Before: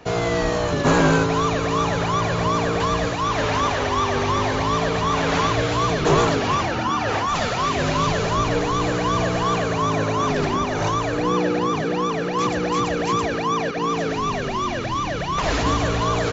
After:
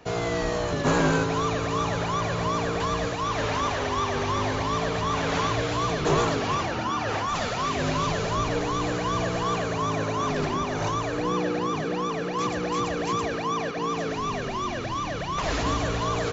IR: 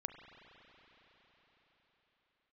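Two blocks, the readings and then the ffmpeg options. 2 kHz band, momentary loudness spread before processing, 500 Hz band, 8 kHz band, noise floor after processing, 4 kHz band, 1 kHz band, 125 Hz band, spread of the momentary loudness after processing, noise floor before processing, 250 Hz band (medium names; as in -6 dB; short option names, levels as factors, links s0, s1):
-5.0 dB, 4 LU, -5.0 dB, no reading, -30 dBFS, -5.0 dB, -5.5 dB, -5.0 dB, 4 LU, -25 dBFS, -5.5 dB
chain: -filter_complex "[0:a]asplit=2[s0][s1];[1:a]atrim=start_sample=2205,asetrate=74970,aresample=44100,highshelf=f=6500:g=8[s2];[s1][s2]afir=irnorm=-1:irlink=0,volume=1.06[s3];[s0][s3]amix=inputs=2:normalize=0,volume=0.376"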